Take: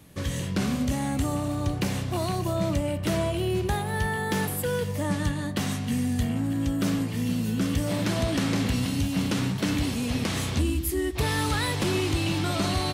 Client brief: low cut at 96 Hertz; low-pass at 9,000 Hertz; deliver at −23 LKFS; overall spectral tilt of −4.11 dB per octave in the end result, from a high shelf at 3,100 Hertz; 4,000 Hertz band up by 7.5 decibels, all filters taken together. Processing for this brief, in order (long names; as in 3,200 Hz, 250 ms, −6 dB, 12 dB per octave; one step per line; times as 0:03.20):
high-pass filter 96 Hz
low-pass filter 9,000 Hz
high-shelf EQ 3,100 Hz +4.5 dB
parametric band 4,000 Hz +6 dB
level +3 dB